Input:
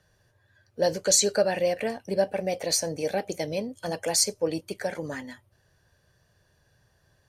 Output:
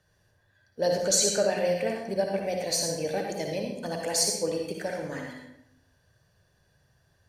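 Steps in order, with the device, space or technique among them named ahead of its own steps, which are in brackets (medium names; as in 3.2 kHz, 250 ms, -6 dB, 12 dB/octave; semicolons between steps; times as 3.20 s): bathroom (reverberation RT60 0.75 s, pre-delay 53 ms, DRR 1 dB); trim -3.5 dB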